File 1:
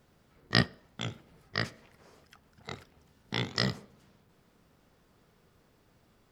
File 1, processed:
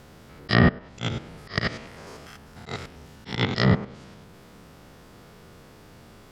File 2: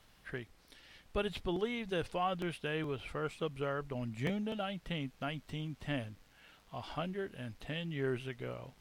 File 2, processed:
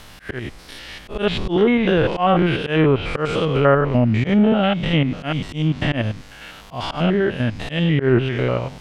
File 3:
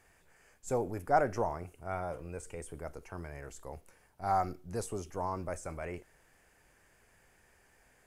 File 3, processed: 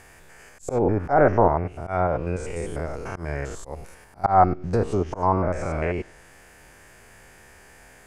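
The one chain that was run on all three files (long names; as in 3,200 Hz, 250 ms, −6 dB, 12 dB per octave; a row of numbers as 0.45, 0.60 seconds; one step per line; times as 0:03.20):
spectrum averaged block by block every 100 ms
volume swells 141 ms
treble cut that deepens with the level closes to 1,900 Hz, closed at −34.5 dBFS
normalise the peak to −3 dBFS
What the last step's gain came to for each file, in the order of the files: +18.0, +24.0, +17.0 decibels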